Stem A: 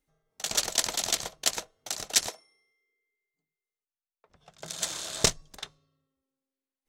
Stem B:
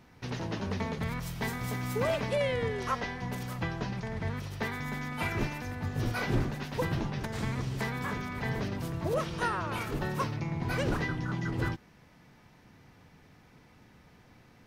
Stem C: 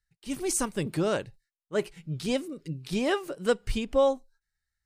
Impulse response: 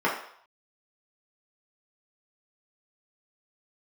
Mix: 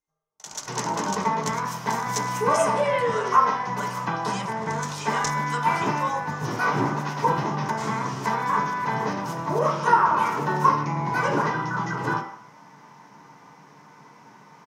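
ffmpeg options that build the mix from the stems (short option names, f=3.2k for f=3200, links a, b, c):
-filter_complex "[0:a]volume=-17.5dB,asplit=2[a][b];[b]volume=-11.5dB[c];[1:a]adelay=450,volume=-1.5dB,asplit=2[d][e];[e]volume=-8.5dB[f];[2:a]highpass=1.1k,adelay=2050,volume=-3dB,asplit=2[g][h];[h]volume=-14dB[i];[d][g]amix=inputs=2:normalize=0,highpass=460,acompressor=threshold=-39dB:ratio=6,volume=0dB[j];[3:a]atrim=start_sample=2205[k];[c][f][i]amix=inputs=3:normalize=0[l];[l][k]afir=irnorm=-1:irlink=0[m];[a][j][m]amix=inputs=3:normalize=0,equalizer=f=100:t=o:w=0.67:g=7,equalizer=f=1k:t=o:w=0.67:g=10,equalizer=f=6.3k:t=o:w=0.67:g=12"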